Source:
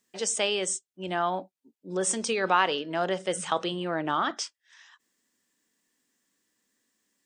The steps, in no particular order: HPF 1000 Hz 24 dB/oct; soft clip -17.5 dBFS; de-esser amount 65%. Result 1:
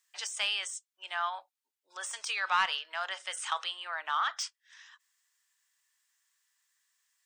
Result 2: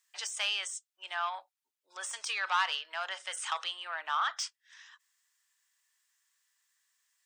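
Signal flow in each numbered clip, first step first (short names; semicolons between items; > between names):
HPF > de-esser > soft clip; de-esser > soft clip > HPF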